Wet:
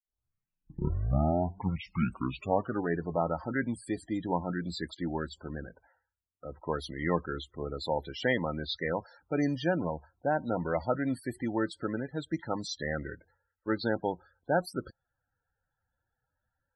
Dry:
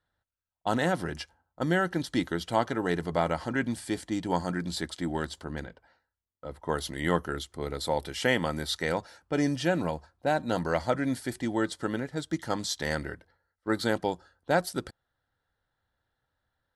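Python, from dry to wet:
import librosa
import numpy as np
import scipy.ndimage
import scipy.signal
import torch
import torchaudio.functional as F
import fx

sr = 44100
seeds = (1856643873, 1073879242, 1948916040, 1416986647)

y = fx.tape_start_head(x, sr, length_s=3.0)
y = fx.spec_topn(y, sr, count=32)
y = y * librosa.db_to_amplitude(-2.0)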